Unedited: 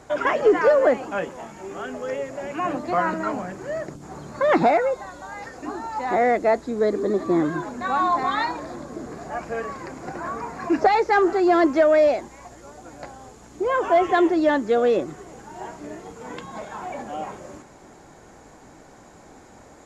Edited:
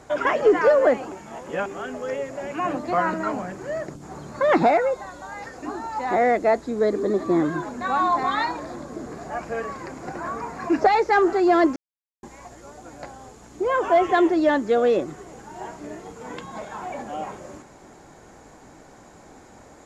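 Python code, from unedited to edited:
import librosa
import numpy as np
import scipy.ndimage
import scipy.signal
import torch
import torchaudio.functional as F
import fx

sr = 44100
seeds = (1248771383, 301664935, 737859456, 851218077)

y = fx.edit(x, sr, fx.reverse_span(start_s=1.12, length_s=0.54),
    fx.silence(start_s=11.76, length_s=0.47), tone=tone)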